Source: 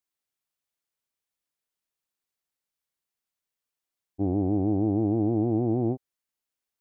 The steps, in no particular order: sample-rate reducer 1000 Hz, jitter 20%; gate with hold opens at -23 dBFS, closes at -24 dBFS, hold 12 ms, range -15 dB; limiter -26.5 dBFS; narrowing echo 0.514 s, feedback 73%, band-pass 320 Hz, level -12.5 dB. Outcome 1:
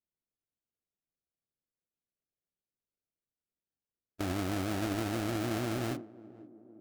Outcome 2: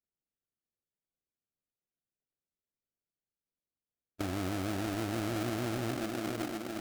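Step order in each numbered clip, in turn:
sample-rate reducer > narrowing echo > gate with hold > limiter; gate with hold > narrowing echo > limiter > sample-rate reducer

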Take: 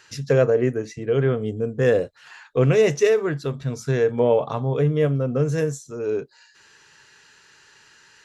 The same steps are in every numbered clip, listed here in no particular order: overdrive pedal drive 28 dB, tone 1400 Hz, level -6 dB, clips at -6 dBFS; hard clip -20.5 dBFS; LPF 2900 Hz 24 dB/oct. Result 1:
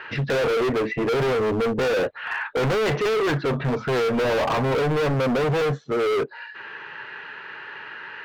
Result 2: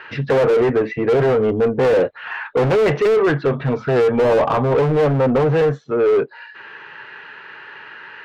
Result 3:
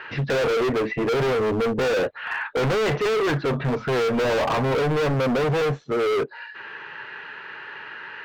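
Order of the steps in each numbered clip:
LPF > overdrive pedal > hard clip; LPF > hard clip > overdrive pedal; overdrive pedal > LPF > hard clip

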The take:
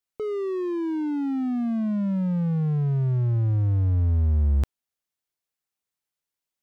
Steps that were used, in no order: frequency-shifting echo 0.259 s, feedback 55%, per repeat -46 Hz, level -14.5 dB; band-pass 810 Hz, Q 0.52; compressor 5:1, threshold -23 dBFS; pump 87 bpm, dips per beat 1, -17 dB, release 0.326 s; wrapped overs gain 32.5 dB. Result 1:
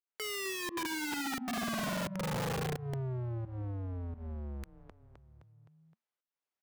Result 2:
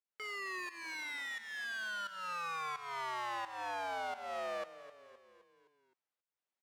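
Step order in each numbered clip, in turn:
pump > frequency-shifting echo > compressor > band-pass > wrapped overs; compressor > wrapped overs > pump > frequency-shifting echo > band-pass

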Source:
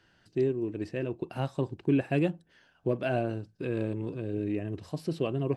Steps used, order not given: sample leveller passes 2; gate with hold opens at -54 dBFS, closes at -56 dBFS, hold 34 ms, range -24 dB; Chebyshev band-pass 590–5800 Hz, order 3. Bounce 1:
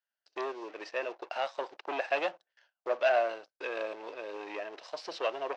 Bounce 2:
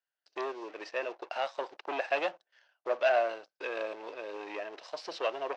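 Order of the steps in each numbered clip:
sample leveller > Chebyshev band-pass > gate with hold; sample leveller > gate with hold > Chebyshev band-pass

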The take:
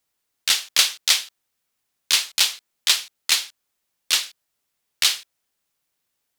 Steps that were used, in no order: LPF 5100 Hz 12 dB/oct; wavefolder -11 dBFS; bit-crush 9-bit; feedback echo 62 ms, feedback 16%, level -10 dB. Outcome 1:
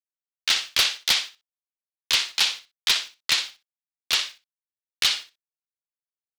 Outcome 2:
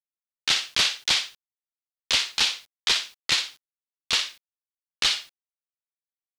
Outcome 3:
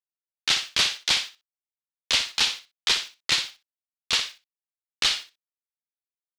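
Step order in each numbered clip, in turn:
LPF > bit-crush > feedback echo > wavefolder; feedback echo > wavefolder > LPF > bit-crush; wavefolder > LPF > bit-crush > feedback echo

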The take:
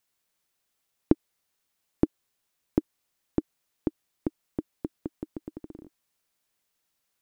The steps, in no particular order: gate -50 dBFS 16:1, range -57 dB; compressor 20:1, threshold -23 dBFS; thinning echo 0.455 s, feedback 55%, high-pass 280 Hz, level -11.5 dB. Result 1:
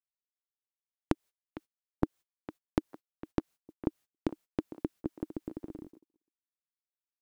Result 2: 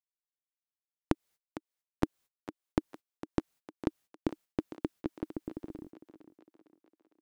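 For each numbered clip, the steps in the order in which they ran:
compressor > thinning echo > gate; gate > compressor > thinning echo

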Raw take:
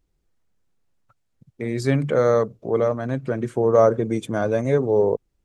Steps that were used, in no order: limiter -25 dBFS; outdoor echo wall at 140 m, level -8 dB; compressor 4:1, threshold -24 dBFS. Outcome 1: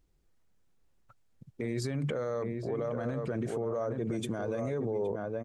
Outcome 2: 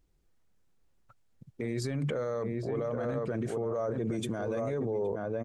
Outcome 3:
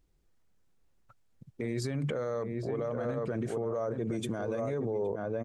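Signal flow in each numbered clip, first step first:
compressor > outdoor echo > limiter; outdoor echo > limiter > compressor; outdoor echo > compressor > limiter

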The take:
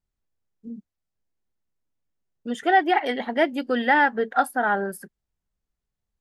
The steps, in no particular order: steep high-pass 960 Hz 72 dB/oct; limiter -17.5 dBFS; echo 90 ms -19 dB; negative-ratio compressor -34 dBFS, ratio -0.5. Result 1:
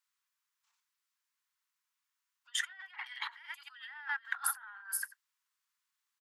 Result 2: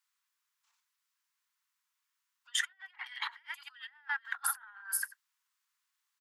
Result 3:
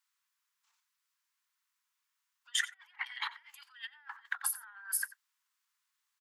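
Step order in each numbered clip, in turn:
echo > limiter > negative-ratio compressor > steep high-pass; echo > negative-ratio compressor > limiter > steep high-pass; negative-ratio compressor > echo > limiter > steep high-pass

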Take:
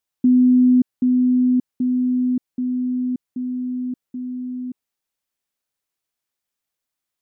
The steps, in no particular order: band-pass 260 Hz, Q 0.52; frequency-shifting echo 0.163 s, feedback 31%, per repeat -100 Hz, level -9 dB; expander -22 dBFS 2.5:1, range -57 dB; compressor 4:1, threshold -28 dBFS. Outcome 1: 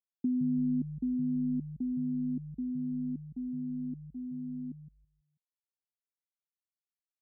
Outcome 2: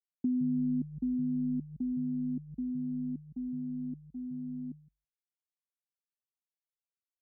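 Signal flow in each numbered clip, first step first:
compressor > expander > frequency-shifting echo > band-pass; frequency-shifting echo > band-pass > compressor > expander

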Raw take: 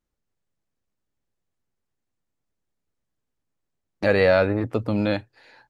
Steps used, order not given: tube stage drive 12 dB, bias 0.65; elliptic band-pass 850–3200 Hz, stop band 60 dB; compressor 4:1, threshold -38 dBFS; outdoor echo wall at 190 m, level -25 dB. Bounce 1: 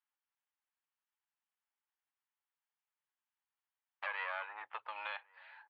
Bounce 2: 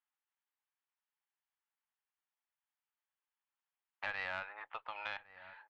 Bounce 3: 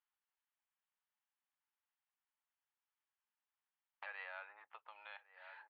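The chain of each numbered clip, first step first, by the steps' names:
tube stage > elliptic band-pass > compressor > outdoor echo; elliptic band-pass > tube stage > outdoor echo > compressor; outdoor echo > compressor > tube stage > elliptic band-pass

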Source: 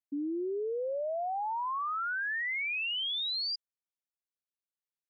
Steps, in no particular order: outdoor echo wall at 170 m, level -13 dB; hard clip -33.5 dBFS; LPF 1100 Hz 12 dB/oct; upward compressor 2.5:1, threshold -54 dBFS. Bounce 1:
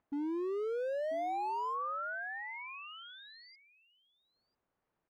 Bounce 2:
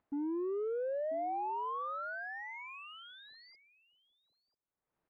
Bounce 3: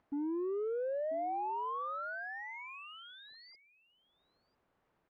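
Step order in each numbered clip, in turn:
upward compressor > LPF > hard clip > outdoor echo; hard clip > outdoor echo > upward compressor > LPF; hard clip > LPF > upward compressor > outdoor echo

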